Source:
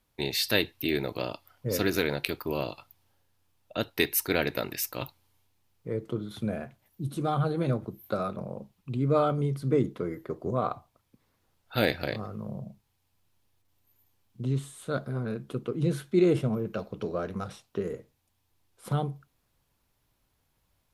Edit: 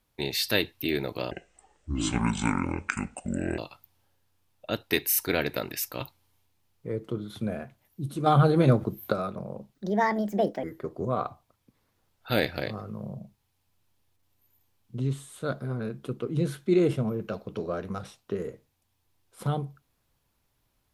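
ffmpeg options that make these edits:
ffmpeg -i in.wav -filter_complex "[0:a]asplit=9[link_01][link_02][link_03][link_04][link_05][link_06][link_07][link_08][link_09];[link_01]atrim=end=1.314[link_10];[link_02]atrim=start=1.31:end=2.65,asetpts=PTS-STARTPTS,asetrate=26019,aresample=44100,atrim=end_sample=100159,asetpts=PTS-STARTPTS[link_11];[link_03]atrim=start=2.646:end=4.192[link_12];[link_04]atrim=start=4.158:end=4.192[link_13];[link_05]atrim=start=4.158:end=7.272[link_14];[link_06]atrim=start=7.268:end=8.132,asetpts=PTS-STARTPTS,volume=7.5dB[link_15];[link_07]atrim=start=8.128:end=8.754[link_16];[link_08]atrim=start=8.75:end=10.09,asetpts=PTS-STARTPTS,asetrate=66150,aresample=44100[link_17];[link_09]atrim=start=10.086[link_18];[link_10][link_11]acrossfade=duration=0.004:curve1=hsin:curve2=hsin[link_19];[link_19][link_12]acrossfade=duration=0.004:curve1=hsin:curve2=hsin[link_20];[link_20][link_13]acrossfade=duration=0.004:curve1=hsin:curve2=hsin[link_21];[link_21][link_14]acrossfade=duration=0.004:curve1=hsin:curve2=hsin[link_22];[link_22][link_15]acrossfade=duration=0.004:curve1=hsin:curve2=hsin[link_23];[link_23][link_16]acrossfade=duration=0.004:curve1=hsin:curve2=hsin[link_24];[link_24][link_17]acrossfade=duration=0.004:curve1=hsin:curve2=hsin[link_25];[link_25][link_18]acrossfade=duration=0.004:curve1=hsin:curve2=hsin" out.wav

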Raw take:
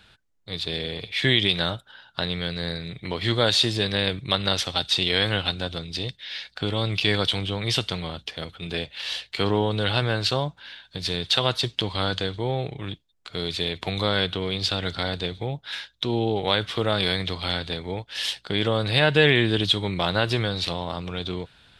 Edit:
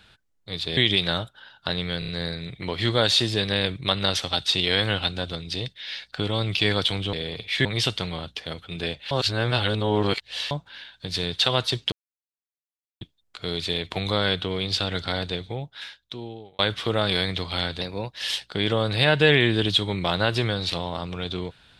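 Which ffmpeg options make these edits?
ffmpeg -i in.wav -filter_complex "[0:a]asplit=14[link_01][link_02][link_03][link_04][link_05][link_06][link_07][link_08][link_09][link_10][link_11][link_12][link_13][link_14];[link_01]atrim=end=0.772[link_15];[link_02]atrim=start=1.288:end=2.542[link_16];[link_03]atrim=start=2.508:end=2.542[link_17];[link_04]atrim=start=2.508:end=2.542[link_18];[link_05]atrim=start=2.508:end=7.562[link_19];[link_06]atrim=start=0.768:end=1.292[link_20];[link_07]atrim=start=7.558:end=9.022[link_21];[link_08]atrim=start=9.018:end=10.422,asetpts=PTS-STARTPTS,areverse[link_22];[link_09]atrim=start=10.418:end=11.83,asetpts=PTS-STARTPTS,afade=type=out:start_time=1.408:duration=0.004:curve=hsin[link_23];[link_10]atrim=start=11.83:end=12.92,asetpts=PTS-STARTPTS,volume=0[link_24];[link_11]atrim=start=12.92:end=16.5,asetpts=PTS-STARTPTS,afade=type=in:duration=0.004:curve=hsin,afade=type=out:start_time=2.23:duration=1.35[link_25];[link_12]atrim=start=16.5:end=17.724,asetpts=PTS-STARTPTS,afade=type=in:duration=0.004:curve=hsin[link_26];[link_13]atrim=start=17.72:end=18.15,asetpts=PTS-STARTPTS,asetrate=48510,aresample=44100,atrim=end_sample=17239,asetpts=PTS-STARTPTS[link_27];[link_14]atrim=start=18.146[link_28];[link_15][link_16]acrossfade=duration=0.004:curve1=hsin:curve2=hsin[link_29];[link_29][link_17]acrossfade=duration=0.004:curve1=hsin:curve2=hsin[link_30];[link_30][link_18]acrossfade=duration=0.004:curve1=hsin:curve2=hsin[link_31];[link_31][link_19]acrossfade=duration=0.004:curve1=hsin:curve2=hsin[link_32];[link_32][link_20]acrossfade=duration=0.004:curve1=hsin:curve2=hsin[link_33];[link_33][link_21]acrossfade=duration=0.004:curve1=hsin:curve2=hsin[link_34];[link_34][link_22]acrossfade=duration=0.004:curve1=hsin:curve2=hsin[link_35];[link_23][link_24][link_25][link_26]concat=n=4:v=0:a=1[link_36];[link_35][link_36]acrossfade=duration=0.004:curve1=hsin:curve2=hsin[link_37];[link_37][link_27]acrossfade=duration=0.004:curve1=hsin:curve2=hsin[link_38];[link_38][link_28]acrossfade=duration=0.004:curve1=hsin:curve2=hsin" out.wav

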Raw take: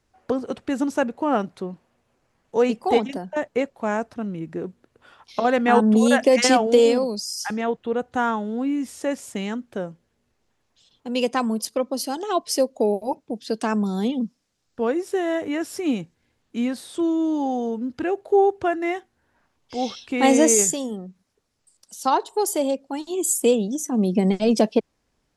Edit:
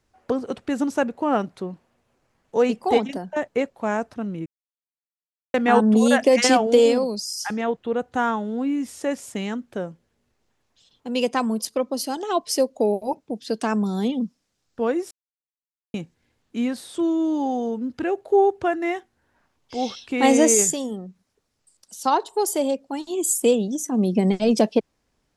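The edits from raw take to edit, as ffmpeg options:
ffmpeg -i in.wav -filter_complex "[0:a]asplit=5[link_01][link_02][link_03][link_04][link_05];[link_01]atrim=end=4.46,asetpts=PTS-STARTPTS,afade=type=out:start_time=4.456:duration=0.004:curve=hsin[link_06];[link_02]atrim=start=4.46:end=5.54,asetpts=PTS-STARTPTS,volume=0[link_07];[link_03]atrim=start=5.54:end=15.11,asetpts=PTS-STARTPTS,afade=type=in:duration=0.004:curve=hsin,afade=type=out:start_time=9.566:duration=0.004:curve=hsin[link_08];[link_04]atrim=start=15.11:end=15.94,asetpts=PTS-STARTPTS,volume=0[link_09];[link_05]atrim=start=15.94,asetpts=PTS-STARTPTS,afade=type=in:duration=0.004:curve=hsin[link_10];[link_06][link_07][link_08][link_09][link_10]concat=n=5:v=0:a=1" out.wav

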